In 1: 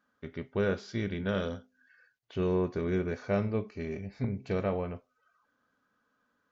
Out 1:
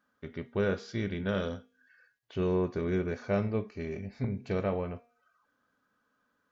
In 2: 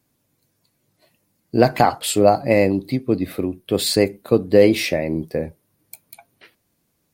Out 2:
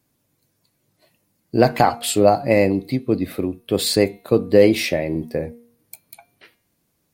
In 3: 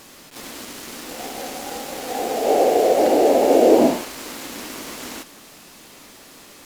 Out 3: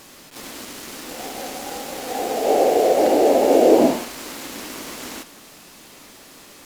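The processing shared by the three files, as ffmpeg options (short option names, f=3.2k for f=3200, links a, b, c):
-af "bandreject=f=236.5:t=h:w=4,bandreject=f=473:t=h:w=4,bandreject=f=709.5:t=h:w=4,bandreject=f=946:t=h:w=4,bandreject=f=1.1825k:t=h:w=4,bandreject=f=1.419k:t=h:w=4,bandreject=f=1.6555k:t=h:w=4,bandreject=f=1.892k:t=h:w=4,bandreject=f=2.1285k:t=h:w=4,bandreject=f=2.365k:t=h:w=4,bandreject=f=2.6015k:t=h:w=4,bandreject=f=2.838k:t=h:w=4,bandreject=f=3.0745k:t=h:w=4,bandreject=f=3.311k:t=h:w=4,bandreject=f=3.5475k:t=h:w=4,bandreject=f=3.784k:t=h:w=4,bandreject=f=4.0205k:t=h:w=4,bandreject=f=4.257k:t=h:w=4"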